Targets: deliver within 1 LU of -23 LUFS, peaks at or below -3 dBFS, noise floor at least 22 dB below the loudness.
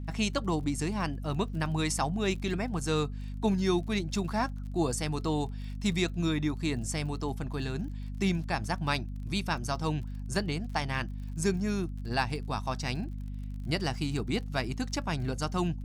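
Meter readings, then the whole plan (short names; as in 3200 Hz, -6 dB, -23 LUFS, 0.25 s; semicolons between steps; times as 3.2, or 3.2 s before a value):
ticks 39/s; hum 50 Hz; harmonics up to 250 Hz; hum level -34 dBFS; loudness -32.0 LUFS; peak -14.5 dBFS; loudness target -23.0 LUFS
-> de-click; de-hum 50 Hz, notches 5; gain +9 dB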